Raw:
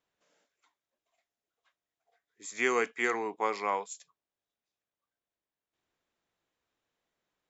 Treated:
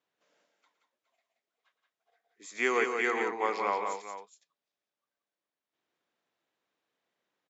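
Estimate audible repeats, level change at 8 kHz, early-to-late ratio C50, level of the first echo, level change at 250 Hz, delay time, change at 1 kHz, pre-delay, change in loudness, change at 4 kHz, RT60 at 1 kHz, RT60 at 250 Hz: 3, no reading, no reverb, -13.5 dB, +0.5 dB, 114 ms, +1.5 dB, no reverb, +1.0 dB, +1.0 dB, no reverb, no reverb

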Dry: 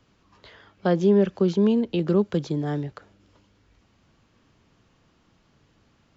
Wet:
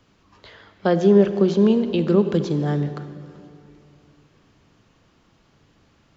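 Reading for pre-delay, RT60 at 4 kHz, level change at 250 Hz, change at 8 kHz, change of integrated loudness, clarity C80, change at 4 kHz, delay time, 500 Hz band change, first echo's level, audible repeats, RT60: 37 ms, 2.0 s, +3.5 dB, no reading, +3.5 dB, 11.0 dB, +4.0 dB, no echo, +4.5 dB, no echo, no echo, 2.7 s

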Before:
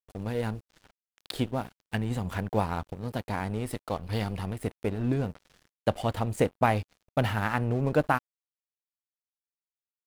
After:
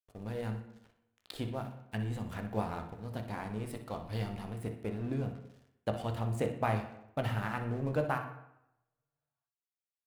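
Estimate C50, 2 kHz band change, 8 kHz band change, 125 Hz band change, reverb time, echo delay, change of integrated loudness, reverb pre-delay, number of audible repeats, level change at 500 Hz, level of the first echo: 7.5 dB, -8.0 dB, -8.5 dB, -5.5 dB, 0.85 s, 61 ms, -6.5 dB, 15 ms, 1, -7.0 dB, -12.0 dB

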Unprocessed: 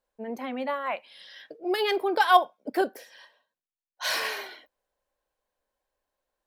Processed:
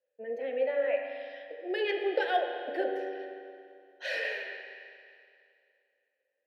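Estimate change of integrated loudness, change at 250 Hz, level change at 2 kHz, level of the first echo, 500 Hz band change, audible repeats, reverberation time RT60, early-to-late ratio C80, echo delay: -6.0 dB, -7.0 dB, -4.0 dB, no echo, -0.5 dB, no echo, 2.4 s, 4.5 dB, no echo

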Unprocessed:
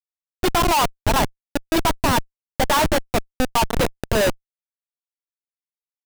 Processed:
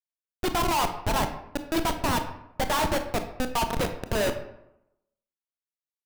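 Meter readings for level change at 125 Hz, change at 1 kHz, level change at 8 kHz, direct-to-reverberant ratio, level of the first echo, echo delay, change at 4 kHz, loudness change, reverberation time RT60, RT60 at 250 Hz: -6.5 dB, -6.5 dB, -7.0 dB, 7.0 dB, no echo, no echo, -7.0 dB, -7.0 dB, 0.85 s, 0.90 s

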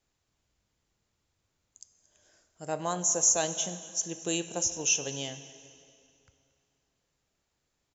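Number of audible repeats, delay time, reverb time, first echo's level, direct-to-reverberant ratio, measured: 1, 229 ms, 2.5 s, -21.0 dB, 10.5 dB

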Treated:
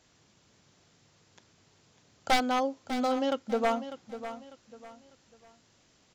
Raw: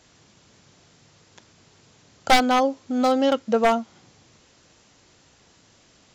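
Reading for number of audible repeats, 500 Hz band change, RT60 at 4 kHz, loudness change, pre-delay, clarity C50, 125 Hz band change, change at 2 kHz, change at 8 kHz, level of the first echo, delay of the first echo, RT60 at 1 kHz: 3, -8.5 dB, no reverb, -9.5 dB, no reverb, no reverb, no reading, -8.0 dB, -8.0 dB, -12.0 dB, 598 ms, no reverb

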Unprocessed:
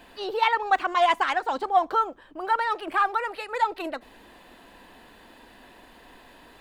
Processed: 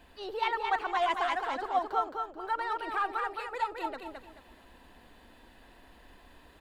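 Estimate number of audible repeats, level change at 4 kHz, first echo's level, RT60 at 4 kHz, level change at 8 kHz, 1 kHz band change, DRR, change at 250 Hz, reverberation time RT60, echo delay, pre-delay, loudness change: 3, -7.0 dB, -4.5 dB, no reverb, no reading, -7.0 dB, no reverb, -6.0 dB, no reverb, 217 ms, no reverb, -7.0 dB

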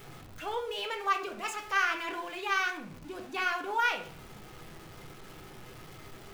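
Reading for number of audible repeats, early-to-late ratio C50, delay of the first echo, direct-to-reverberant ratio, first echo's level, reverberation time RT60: no echo, 10.5 dB, no echo, 2.5 dB, no echo, 0.50 s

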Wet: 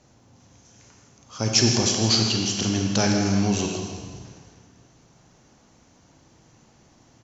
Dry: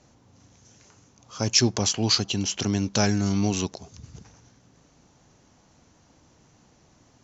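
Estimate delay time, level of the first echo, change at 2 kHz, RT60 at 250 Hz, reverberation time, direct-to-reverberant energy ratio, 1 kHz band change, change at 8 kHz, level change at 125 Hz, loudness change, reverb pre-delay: 161 ms, -12.5 dB, +2.5 dB, 1.6 s, 1.7 s, 0.5 dB, +2.5 dB, no reading, +2.5 dB, +2.0 dB, 32 ms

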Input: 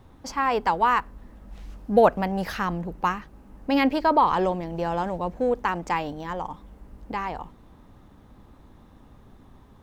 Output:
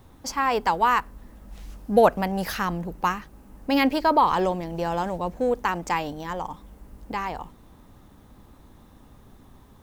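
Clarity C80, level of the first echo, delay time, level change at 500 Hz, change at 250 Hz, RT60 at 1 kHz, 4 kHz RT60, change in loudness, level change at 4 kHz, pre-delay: no reverb, no echo, no echo, 0.0 dB, 0.0 dB, no reverb, no reverb, +0.5 dB, +3.0 dB, no reverb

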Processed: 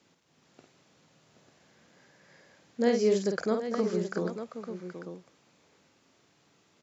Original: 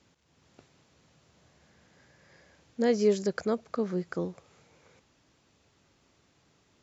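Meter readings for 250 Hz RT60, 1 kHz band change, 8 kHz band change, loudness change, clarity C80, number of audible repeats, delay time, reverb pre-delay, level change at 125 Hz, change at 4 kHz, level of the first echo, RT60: no reverb, +1.5 dB, no reading, -0.5 dB, no reverb, 3, 51 ms, no reverb, 0.0 dB, +1.5 dB, -5.5 dB, no reverb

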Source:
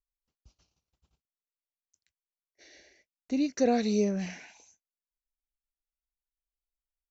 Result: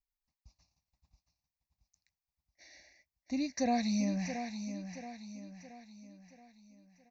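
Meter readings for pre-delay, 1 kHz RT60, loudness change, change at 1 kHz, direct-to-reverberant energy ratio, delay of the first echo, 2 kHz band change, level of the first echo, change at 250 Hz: no reverb, no reverb, -7.0 dB, -0.5 dB, no reverb, 676 ms, -1.5 dB, -9.0 dB, -3.5 dB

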